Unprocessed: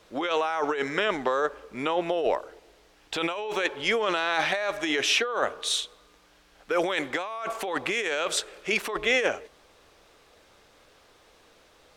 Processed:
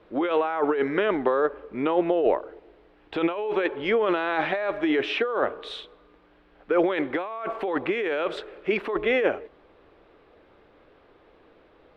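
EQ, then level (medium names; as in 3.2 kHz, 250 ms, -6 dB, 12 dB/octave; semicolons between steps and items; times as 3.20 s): distance through air 450 m; peaking EQ 340 Hz +6.5 dB 1 oct; +2.0 dB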